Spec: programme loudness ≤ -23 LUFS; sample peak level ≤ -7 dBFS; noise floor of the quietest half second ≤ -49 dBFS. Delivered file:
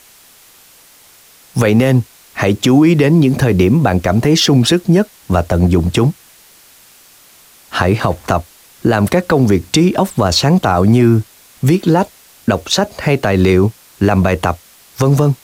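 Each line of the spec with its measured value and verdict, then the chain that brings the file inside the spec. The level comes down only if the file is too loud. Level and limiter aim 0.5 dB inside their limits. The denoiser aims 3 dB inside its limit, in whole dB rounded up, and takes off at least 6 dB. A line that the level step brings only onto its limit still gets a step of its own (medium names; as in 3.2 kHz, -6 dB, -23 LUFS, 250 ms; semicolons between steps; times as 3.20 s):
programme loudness -13.5 LUFS: fail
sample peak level -2.0 dBFS: fail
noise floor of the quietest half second -45 dBFS: fail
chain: trim -10 dB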